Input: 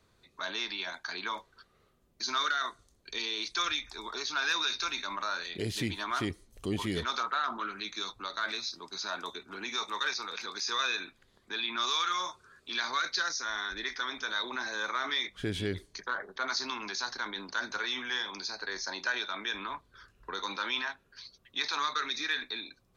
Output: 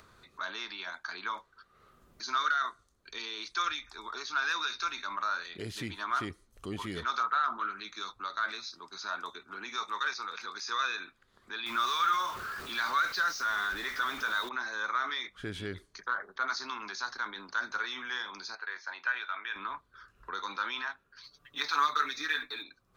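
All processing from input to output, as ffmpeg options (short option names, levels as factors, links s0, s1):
-filter_complex "[0:a]asettb=1/sr,asplit=3[s0][s1][s2];[s0]atrim=end=11.664[s3];[s1]atrim=start=11.66:end=14.49,asetpts=PTS-STARTPTS,afade=t=in:d=0.004:c=qsin,afade=t=out:st=2.826:d=0.004:c=qsin,aeval=exprs='val(0)+0.5*0.0224*sgn(val(0))':c=same,equalizer=f=9000:w=0.94:g=-6[s4];[s2]atrim=start=14.486[s5];[s3][s4]acrossfade=d=0.004:c1=hsin:c2=qsin[s6];[s6][s5]acrossfade=d=0.004:c1=qsin:c2=hsin,asettb=1/sr,asplit=3[s7][s8][s9];[s7]atrim=end=18.554[s10];[s8]atrim=start=18.55:end=19.56,asetpts=PTS-STARTPTS,afade=t=in:d=0.004:c=qsin,afade=t=out:st=1.006:d=0.004:c=qsin,highpass=f=1000:p=1,highshelf=f=3700:t=q:w=1.5:g=-10.5,asplit=2[s11][s12];[s12]adelay=12,volume=0.224[s13];[s11][s13]amix=inputs=2:normalize=0,atrim=end_sample=44541[s14];[s9]atrim=start=19.556[s15];[s10][s14]acrossfade=d=0.004:c1=hsin:c2=qsin[s16];[s16][s15]acrossfade=d=0.004:c1=qsin:c2=hsin,asettb=1/sr,asplit=3[s17][s18][s19];[s17]atrim=end=21.234[s20];[s18]atrim=start=21.23:end=22.63,asetpts=PTS-STARTPTS,afade=t=in:d=0.004:c=qsin,afade=t=out:st=1.396:d=0.004:c=qsin,aecho=1:1:6.9:0.93,atrim=end_sample=61740,acrusher=bits=7:mode=log:mix=0:aa=0.000001[s21];[s19]atrim=start=22.626[s22];[s20][s21]acrossfade=d=0.004:c1=hsin:c2=qsin[s23];[s23][s22]acrossfade=d=0.004:c1=qsin:c2=hsin,equalizer=f=1300:t=o:w=0.77:g=9.5,acompressor=mode=upward:threshold=0.00794:ratio=2.5,volume=0.501"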